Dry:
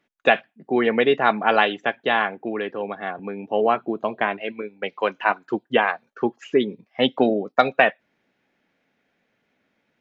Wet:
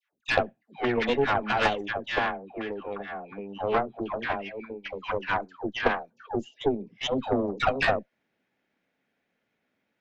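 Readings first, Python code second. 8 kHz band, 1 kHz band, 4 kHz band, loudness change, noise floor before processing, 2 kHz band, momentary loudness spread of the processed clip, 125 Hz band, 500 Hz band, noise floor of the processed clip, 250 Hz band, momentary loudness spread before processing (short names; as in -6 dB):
n/a, -6.5 dB, -5.5 dB, -6.5 dB, -72 dBFS, -6.5 dB, 11 LU, +0.5 dB, -7.0 dB, -79 dBFS, -6.5 dB, 11 LU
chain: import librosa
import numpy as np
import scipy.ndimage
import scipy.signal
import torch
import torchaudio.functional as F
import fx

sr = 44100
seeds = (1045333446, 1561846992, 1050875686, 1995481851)

y = fx.dispersion(x, sr, late='lows', ms=135.0, hz=880.0)
y = fx.spec_box(y, sr, start_s=6.27, length_s=0.34, low_hz=930.0, high_hz=2700.0, gain_db=-22)
y = fx.cheby_harmonics(y, sr, harmonics=(6,), levels_db=(-17,), full_scale_db=-1.0)
y = y * librosa.db_to_amplitude(-7.0)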